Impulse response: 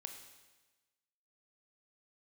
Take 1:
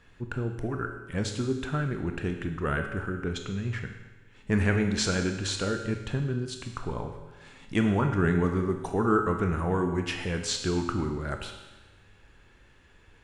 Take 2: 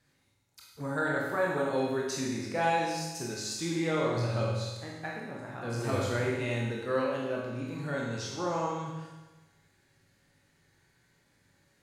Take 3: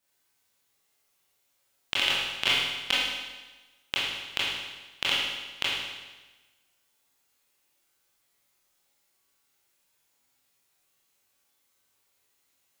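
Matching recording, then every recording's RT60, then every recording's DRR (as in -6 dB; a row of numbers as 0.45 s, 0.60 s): 1; 1.2 s, 1.2 s, 1.2 s; 4.5 dB, -4.0 dB, -8.5 dB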